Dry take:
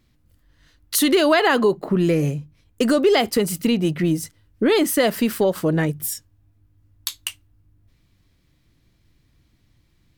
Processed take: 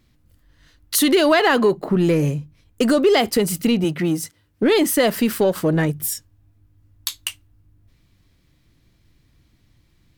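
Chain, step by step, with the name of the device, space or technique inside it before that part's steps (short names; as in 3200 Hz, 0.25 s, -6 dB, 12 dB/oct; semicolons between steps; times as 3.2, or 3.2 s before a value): parallel distortion (in parallel at -10 dB: hard clip -22 dBFS, distortion -7 dB); 3.84–4.63 on the sum: HPF 180 Hz 6 dB/oct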